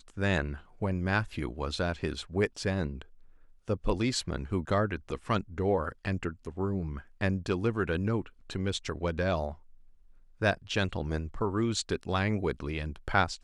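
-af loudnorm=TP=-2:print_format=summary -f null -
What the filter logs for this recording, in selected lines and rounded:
Input Integrated:    -31.7 LUFS
Input True Peak:     -10.0 dBTP
Input LRA:             1.5 LU
Input Threshold:     -42.0 LUFS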